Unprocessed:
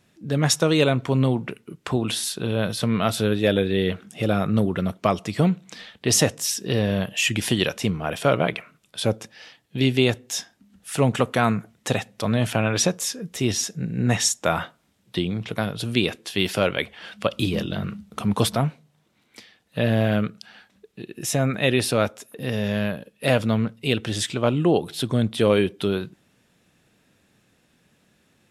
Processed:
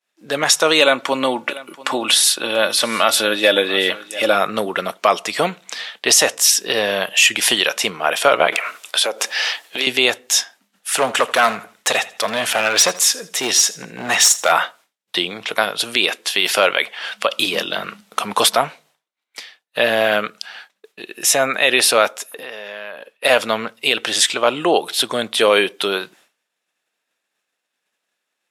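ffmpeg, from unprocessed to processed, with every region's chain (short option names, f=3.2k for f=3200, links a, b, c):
-filter_complex "[0:a]asettb=1/sr,asplit=3[a][b][c];[a]atrim=end=0.804[d];[b]atrim=start=0.8:end=4.35,asetpts=PTS-STARTPTS,afade=t=in:d=0.004:c=qsin,afade=t=out:st=3.546:d=0.004:c=qsin,aecho=1:1:3.5:0.49,atrim=end_sample=156555,aecho=1:1:687:0.1,atrim=end_sample=156555[e];[c]atrim=start=4.346[f];[d][e]acrossfade=d=0.004:c1=hsin:c2=qsin[g];[g][f]acrossfade=d=0.004:c1=qsin:c2=hsin,asettb=1/sr,asplit=3[h][i][j];[h]atrim=end=8.524[k];[i]atrim=start=8.52:end=9.87,asetpts=PTS-STARTPTS,afade=t=in:d=0.004:c=qsin,afade=t=out:st=1.346:d=0.004:c=qsin,highpass=330,acompressor=threshold=-41dB:ratio=4:attack=3.2:release=140:knee=1:detection=peak,aeval=exprs='0.126*sin(PI/2*3.16*val(0)/0.126)':c=same[l];[j]atrim=start=9.866[m];[k][l]acrossfade=d=0.004:c1=hsin:c2=qsin[n];[n][m]acrossfade=d=0.004:c1=qsin:c2=hsin,asettb=1/sr,asplit=3[o][p][q];[o]atrim=end=10.994[r];[p]atrim=start=10.99:end=14.52,asetpts=PTS-STARTPTS,afade=t=in:d=0.004:c=qsin,afade=t=out:st=3.526:d=0.004:c=qsin,aeval=exprs='clip(val(0),-1,0.112)':c=same,aecho=1:1:81|162|243:0.112|0.0348|0.0108,atrim=end_sample=155673[s];[q]atrim=start=14.516[t];[r][s]acrossfade=d=0.004:c1=hsin:c2=qsin[u];[u][t]acrossfade=d=0.004:c1=qsin:c2=hsin,asettb=1/sr,asplit=3[v][w][x];[v]atrim=end=22.404[y];[w]atrim=start=22.4:end=23.25,asetpts=PTS-STARTPTS,afade=t=in:d=0.004:c=qsin,afade=t=out:st=0.846:d=0.004:c=qsin,bass=f=250:g=-10,treble=f=4k:g=-10,acompressor=threshold=-35dB:ratio=5:attack=3.2:release=140:knee=1:detection=peak[z];[x]atrim=start=23.246[aa];[y][z]acrossfade=d=0.004:c1=hsin:c2=qsin[ab];[ab][aa]acrossfade=d=0.004:c1=qsin:c2=hsin,agate=range=-33dB:threshold=-48dB:ratio=3:detection=peak,highpass=690,alimiter=level_in=13.5dB:limit=-1dB:release=50:level=0:latency=1,volume=-1dB"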